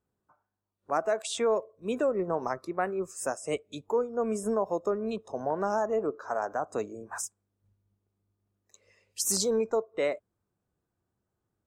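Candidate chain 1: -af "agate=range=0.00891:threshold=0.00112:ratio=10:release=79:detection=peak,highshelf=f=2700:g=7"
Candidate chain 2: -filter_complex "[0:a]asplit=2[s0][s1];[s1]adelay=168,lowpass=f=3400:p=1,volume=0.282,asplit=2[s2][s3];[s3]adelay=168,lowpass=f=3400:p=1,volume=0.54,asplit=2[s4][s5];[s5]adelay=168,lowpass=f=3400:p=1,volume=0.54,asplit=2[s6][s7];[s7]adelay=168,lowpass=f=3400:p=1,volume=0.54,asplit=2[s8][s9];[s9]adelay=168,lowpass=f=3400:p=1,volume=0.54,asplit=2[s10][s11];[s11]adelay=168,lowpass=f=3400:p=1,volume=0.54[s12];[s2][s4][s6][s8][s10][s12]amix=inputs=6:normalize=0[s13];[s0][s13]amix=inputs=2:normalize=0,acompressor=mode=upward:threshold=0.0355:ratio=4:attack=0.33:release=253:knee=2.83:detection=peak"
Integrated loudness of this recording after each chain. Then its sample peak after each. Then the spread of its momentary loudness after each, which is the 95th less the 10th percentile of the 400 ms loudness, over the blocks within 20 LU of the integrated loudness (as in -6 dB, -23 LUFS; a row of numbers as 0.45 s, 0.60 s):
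-29.0 LUFS, -30.5 LUFS; -10.0 dBFS, -15.0 dBFS; 9 LU, 19 LU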